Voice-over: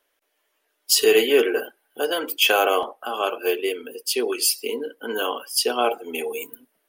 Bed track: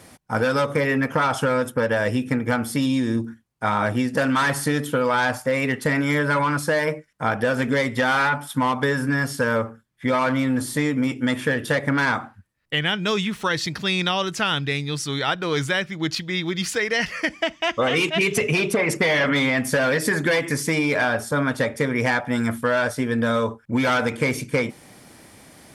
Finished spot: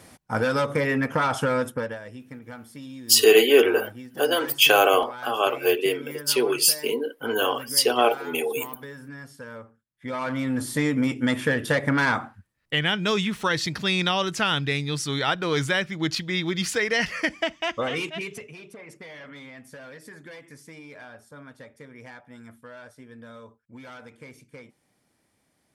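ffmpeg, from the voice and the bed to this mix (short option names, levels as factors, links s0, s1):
-filter_complex "[0:a]adelay=2200,volume=1.19[s0];[1:a]volume=5.62,afade=t=out:st=1.63:d=0.37:silence=0.158489,afade=t=in:st=9.88:d=1:silence=0.133352,afade=t=out:st=17.22:d=1.26:silence=0.0794328[s1];[s0][s1]amix=inputs=2:normalize=0"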